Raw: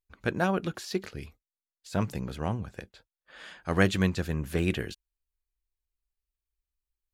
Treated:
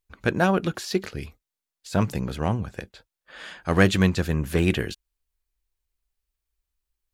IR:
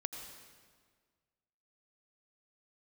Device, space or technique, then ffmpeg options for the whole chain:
parallel distortion: -filter_complex "[0:a]asplit=2[link_01][link_02];[link_02]asoftclip=type=hard:threshold=-20.5dB,volume=-7dB[link_03];[link_01][link_03]amix=inputs=2:normalize=0,volume=3dB"

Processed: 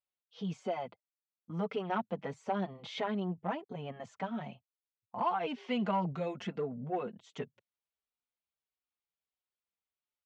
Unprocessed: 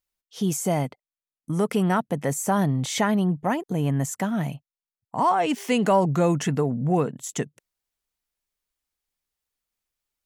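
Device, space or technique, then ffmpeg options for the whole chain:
barber-pole flanger into a guitar amplifier: -filter_complex "[0:a]asplit=2[link_01][link_02];[link_02]adelay=4.9,afreqshift=-1.6[link_03];[link_01][link_03]amix=inputs=2:normalize=1,asoftclip=type=tanh:threshold=-15.5dB,highpass=83,equalizer=frequency=140:width_type=q:width=4:gain=-10,equalizer=frequency=300:width_type=q:width=4:gain=-9,equalizer=frequency=1800:width_type=q:width=4:gain=-5,lowpass=frequency=3800:width=0.5412,lowpass=frequency=3800:width=1.3066,asettb=1/sr,asplit=3[link_04][link_05][link_06];[link_04]atrim=end=6.134[link_07];[link_05]atrim=start=6.13:end=7.17,asetpts=PTS-STARTPTS,afade=type=in:duration=0.004:curve=qsin,afade=type=out:start_time=1.036:duration=0.004:curve=qsin,equalizer=frequency=100:width_type=o:width=0.67:gain=-5,equalizer=frequency=1000:width_type=o:width=0.67:gain=-4,equalizer=frequency=10000:width_type=o:width=0.67:gain=7[link_08];[link_06]atrim=start=7.166[link_09];[link_07][link_08]acrossfade=duration=0.004:curve1=hsin:curve2=qsin[link_10];[link_10][link_09]acrossfade=duration=0.004:curve1=qsin:curve2=hsin,volume=-5.5dB"

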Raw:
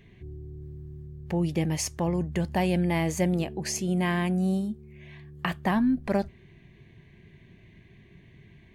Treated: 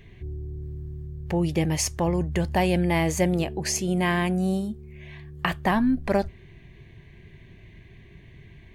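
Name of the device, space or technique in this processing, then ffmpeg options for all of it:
low shelf boost with a cut just above: -af "lowshelf=frequency=67:gain=8,equalizer=frequency=200:width_type=o:width=1:gain=-5,volume=4.5dB"

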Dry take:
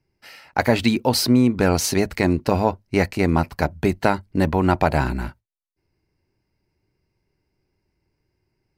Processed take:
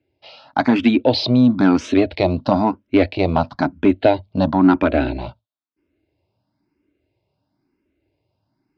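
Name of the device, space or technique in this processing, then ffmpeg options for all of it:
barber-pole phaser into a guitar amplifier: -filter_complex "[0:a]asplit=2[link_01][link_02];[link_02]afreqshift=1[link_03];[link_01][link_03]amix=inputs=2:normalize=1,asoftclip=type=tanh:threshold=-11.5dB,highpass=88,equalizer=frequency=160:width_type=q:width=4:gain=-5,equalizer=frequency=280:width_type=q:width=4:gain=10,equalizer=frequency=420:width_type=q:width=4:gain=-3,equalizer=frequency=620:width_type=q:width=4:gain=8,equalizer=frequency=1900:width_type=q:width=4:gain=-7,equalizer=frequency=3600:width_type=q:width=4:gain=7,lowpass=frequency=4200:width=0.5412,lowpass=frequency=4200:width=1.3066,volume=5dB"

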